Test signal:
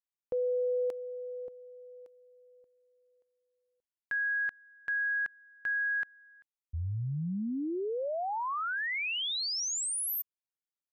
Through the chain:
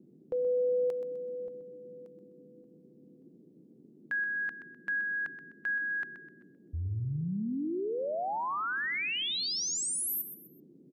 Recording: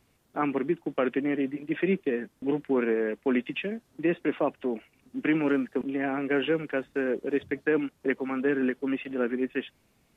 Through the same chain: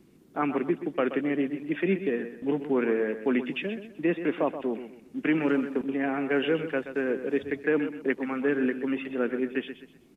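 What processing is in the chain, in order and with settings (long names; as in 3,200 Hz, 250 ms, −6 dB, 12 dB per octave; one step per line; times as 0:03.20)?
noise in a band 150–380 Hz −58 dBFS
repeating echo 127 ms, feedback 32%, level −11 dB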